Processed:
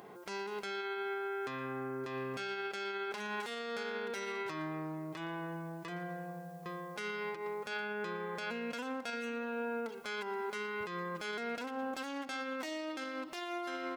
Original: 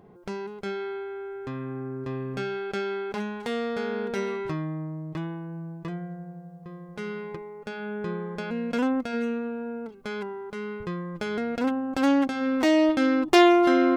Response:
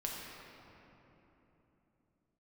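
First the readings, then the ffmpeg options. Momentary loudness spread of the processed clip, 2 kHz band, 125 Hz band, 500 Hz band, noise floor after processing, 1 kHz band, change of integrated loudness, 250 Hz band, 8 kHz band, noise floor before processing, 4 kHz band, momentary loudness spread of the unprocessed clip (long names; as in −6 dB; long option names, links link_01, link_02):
4 LU, −6.0 dB, −12.5 dB, −12.0 dB, −47 dBFS, −9.5 dB, −12.0 dB, −17.5 dB, can't be measured, −44 dBFS, −8.5 dB, 16 LU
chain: -filter_complex "[0:a]asplit=2[link_01][link_02];[link_02]volume=22dB,asoftclip=hard,volume=-22dB,volume=-7dB[link_03];[link_01][link_03]amix=inputs=2:normalize=0,aecho=1:1:116:0.0891,asplit=2[link_04][link_05];[1:a]atrim=start_sample=2205,asetrate=88200,aresample=44100[link_06];[link_05][link_06]afir=irnorm=-1:irlink=0,volume=-11.5dB[link_07];[link_04][link_07]amix=inputs=2:normalize=0,acompressor=threshold=-30dB:ratio=6,highpass=frequency=1200:poles=1,highshelf=frequency=6400:gain=5.5,alimiter=level_in=13dB:limit=-24dB:level=0:latency=1:release=115,volume=-13dB,volume=6.5dB"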